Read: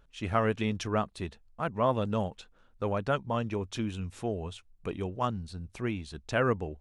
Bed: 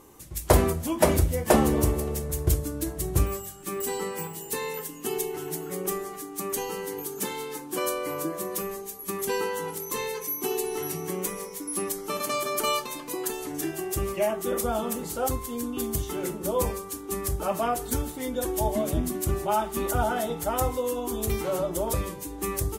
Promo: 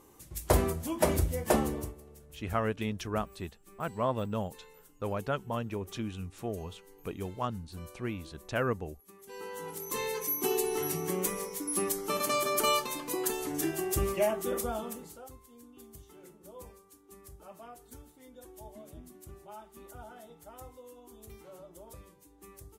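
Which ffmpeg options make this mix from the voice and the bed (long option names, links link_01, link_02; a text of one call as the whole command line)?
ffmpeg -i stem1.wav -i stem2.wav -filter_complex "[0:a]adelay=2200,volume=-3.5dB[link_01];[1:a]volume=16.5dB,afade=type=out:start_time=1.5:duration=0.45:silence=0.133352,afade=type=in:start_time=9.27:duration=0.98:silence=0.0749894,afade=type=out:start_time=14.07:duration=1.18:silence=0.0841395[link_02];[link_01][link_02]amix=inputs=2:normalize=0" out.wav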